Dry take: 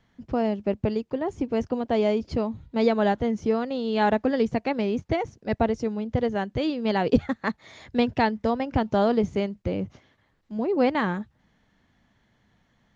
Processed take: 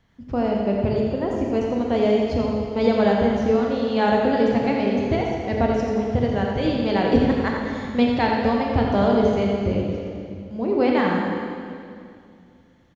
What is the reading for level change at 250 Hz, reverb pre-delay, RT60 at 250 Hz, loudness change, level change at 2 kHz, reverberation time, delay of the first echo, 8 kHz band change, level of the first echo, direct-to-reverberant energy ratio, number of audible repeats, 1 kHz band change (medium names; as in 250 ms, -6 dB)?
+4.5 dB, 20 ms, 2.6 s, +4.5 dB, +3.5 dB, 2.3 s, 86 ms, no reading, -7.0 dB, -1.5 dB, 1, +3.5 dB